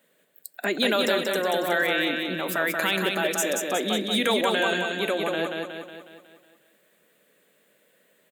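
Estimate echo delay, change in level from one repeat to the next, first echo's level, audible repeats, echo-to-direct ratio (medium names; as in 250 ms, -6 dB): 183 ms, -5.5 dB, -3.5 dB, 6, -2.0 dB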